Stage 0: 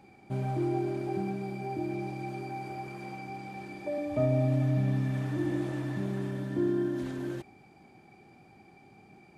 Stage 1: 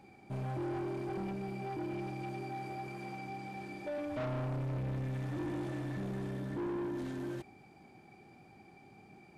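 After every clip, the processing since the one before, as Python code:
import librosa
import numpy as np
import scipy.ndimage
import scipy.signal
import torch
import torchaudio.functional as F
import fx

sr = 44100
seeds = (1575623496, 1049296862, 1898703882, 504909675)

y = 10.0 ** (-32.5 / 20.0) * np.tanh(x / 10.0 ** (-32.5 / 20.0))
y = F.gain(torch.from_numpy(y), -1.5).numpy()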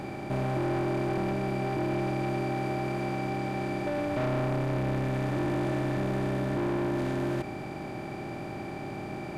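y = fx.bin_compress(x, sr, power=0.4)
y = F.gain(torch.from_numpy(y), 4.5).numpy()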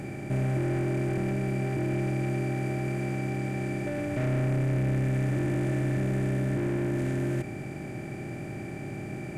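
y = fx.graphic_eq(x, sr, hz=(125, 1000, 2000, 4000, 8000), db=(5, -11, 5, -9, 7))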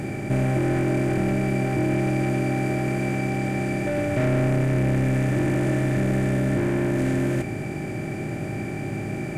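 y = fx.doubler(x, sr, ms=19.0, db=-10)
y = F.gain(torch.from_numpy(y), 7.0).numpy()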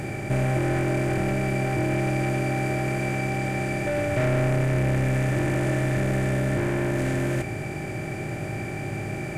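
y = fx.peak_eq(x, sr, hz=240.0, db=-7.5, octaves=1.2)
y = F.gain(torch.from_numpy(y), 1.5).numpy()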